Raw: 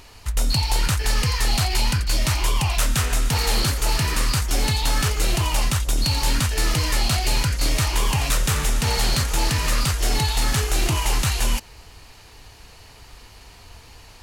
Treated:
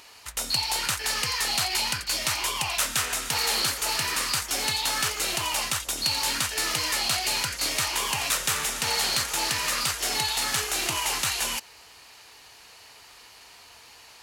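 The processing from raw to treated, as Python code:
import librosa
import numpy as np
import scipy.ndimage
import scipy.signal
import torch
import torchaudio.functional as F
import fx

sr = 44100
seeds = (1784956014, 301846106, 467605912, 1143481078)

y = fx.highpass(x, sr, hz=870.0, slope=6)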